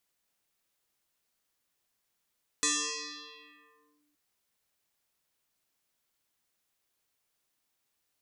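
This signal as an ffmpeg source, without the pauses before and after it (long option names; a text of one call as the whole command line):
ffmpeg -f lavfi -i "aevalsrc='0.0668*pow(10,-3*t/1.71)*sin(2*PI*295*t+11*clip(1-t/1.4,0,1)*sin(2*PI*2.53*295*t))':duration=1.52:sample_rate=44100" out.wav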